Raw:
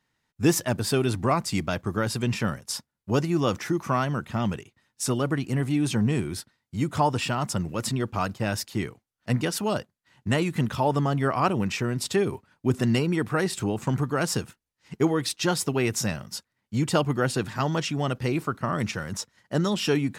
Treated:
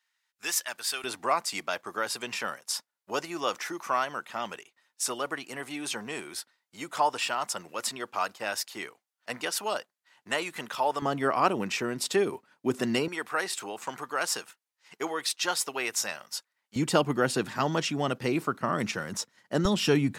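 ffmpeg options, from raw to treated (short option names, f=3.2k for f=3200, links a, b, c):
-af "asetnsamples=n=441:p=0,asendcmd='1.04 highpass f 630;11.02 highpass f 290;13.08 highpass f 710;16.76 highpass f 200;19.65 highpass f 61',highpass=1.4k"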